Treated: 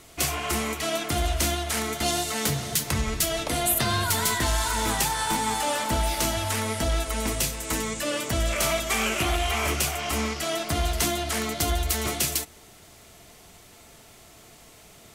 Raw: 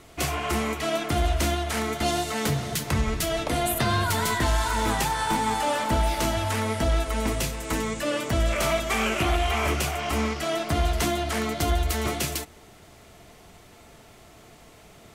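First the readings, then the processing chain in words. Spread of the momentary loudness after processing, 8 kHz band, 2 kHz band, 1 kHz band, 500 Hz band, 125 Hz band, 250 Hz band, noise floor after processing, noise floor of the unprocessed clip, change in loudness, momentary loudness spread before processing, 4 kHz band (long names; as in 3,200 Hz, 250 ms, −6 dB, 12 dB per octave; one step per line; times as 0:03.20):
4 LU, +5.5 dB, 0.0 dB, −2.0 dB, −2.0 dB, −2.5 dB, −2.5 dB, −51 dBFS, −51 dBFS, 0.0 dB, 4 LU, +2.5 dB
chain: high-shelf EQ 3,500 Hz +9.5 dB
level −2.5 dB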